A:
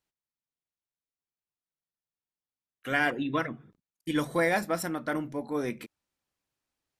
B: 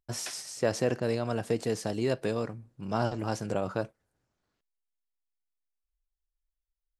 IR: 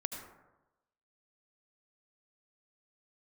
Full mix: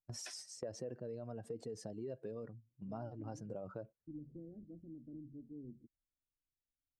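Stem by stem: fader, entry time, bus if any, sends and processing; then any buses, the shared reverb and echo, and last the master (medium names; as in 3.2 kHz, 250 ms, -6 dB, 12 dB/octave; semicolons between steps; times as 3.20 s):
-8.0 dB, 0.00 s, no send, inverse Chebyshev low-pass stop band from 930 Hz, stop band 60 dB; peaking EQ 190 Hz -12 dB 0.46 oct
-4.0 dB, 0.00 s, no send, spectral contrast enhancement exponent 1.7; gate -41 dBFS, range -12 dB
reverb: none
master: compression 2.5:1, threshold -47 dBFS, peak gain reduction 13.5 dB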